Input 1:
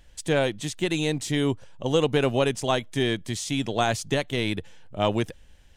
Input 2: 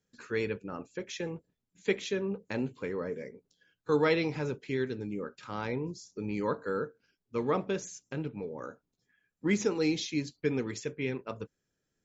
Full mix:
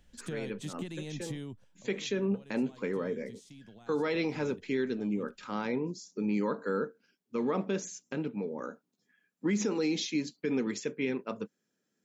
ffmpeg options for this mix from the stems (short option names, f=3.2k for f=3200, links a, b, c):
-filter_complex "[0:a]alimiter=limit=-18dB:level=0:latency=1,acrossover=split=160[a][b];[b]acompressor=threshold=-31dB:ratio=6[c];[a][c]amix=inputs=2:normalize=0,volume=-10dB,afade=t=out:st=1.32:d=0.43:silence=0.223872,asplit=2[d][e];[1:a]highpass=230,volume=1.5dB[f];[e]apad=whole_len=531070[g];[f][g]sidechaincompress=threshold=-48dB:ratio=8:attack=10:release=140[h];[d][h]amix=inputs=2:normalize=0,equalizer=f=210:w=2.2:g=9.5,alimiter=limit=-21.5dB:level=0:latency=1:release=51"